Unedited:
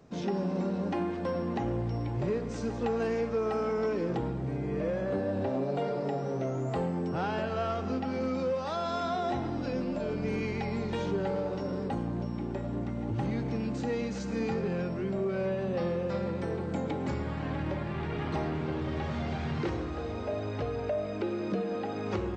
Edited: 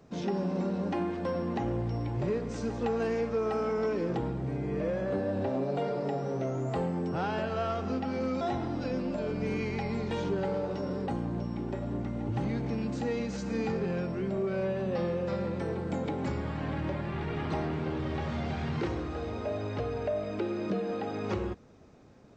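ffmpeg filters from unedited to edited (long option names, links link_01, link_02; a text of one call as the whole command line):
ffmpeg -i in.wav -filter_complex "[0:a]asplit=2[link_01][link_02];[link_01]atrim=end=8.412[link_03];[link_02]atrim=start=9.228[link_04];[link_03][link_04]acrossfade=duration=0.004:curve1=hsin:curve2=hsin" out.wav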